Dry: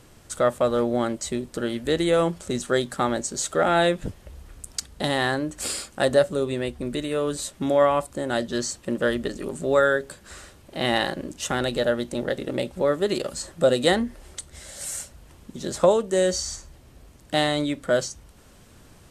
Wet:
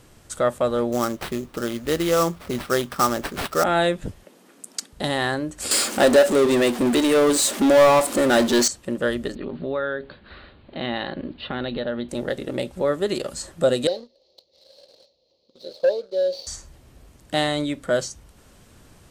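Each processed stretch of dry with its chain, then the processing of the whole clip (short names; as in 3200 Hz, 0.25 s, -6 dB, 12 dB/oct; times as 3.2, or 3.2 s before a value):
0.92–3.64 bell 1200 Hz +8.5 dB 0.32 oct + sample-rate reducer 6800 Hz, jitter 20%
4.24–4.93 steep high-pass 210 Hz + low shelf 310 Hz +8 dB
5.71–8.68 brick-wall FIR high-pass 200 Hz + power-law curve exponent 0.5
9.35–12.09 steep low-pass 4400 Hz 96 dB/oct + compressor 2:1, threshold -27 dBFS + bell 240 Hz +4.5 dB 0.38 oct
13.87–16.47 CVSD 32 kbps + double band-pass 1500 Hz, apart 3 oct + sample leveller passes 1
whole clip: dry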